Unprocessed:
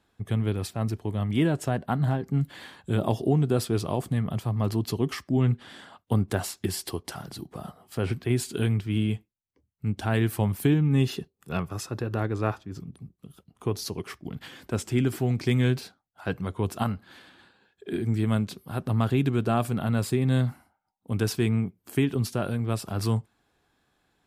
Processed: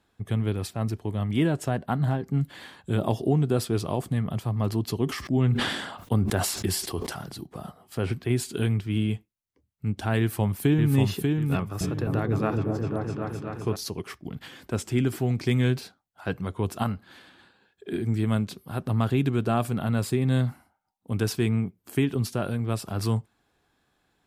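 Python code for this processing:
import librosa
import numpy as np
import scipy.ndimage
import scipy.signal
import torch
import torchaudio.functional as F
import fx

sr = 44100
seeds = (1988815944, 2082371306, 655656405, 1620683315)

y = fx.sustainer(x, sr, db_per_s=45.0, at=(5.06, 7.35))
y = fx.echo_throw(y, sr, start_s=10.19, length_s=0.77, ms=590, feedback_pct=30, wet_db=-3.5)
y = fx.echo_opening(y, sr, ms=257, hz=400, octaves=1, feedback_pct=70, wet_db=0, at=(11.55, 13.76))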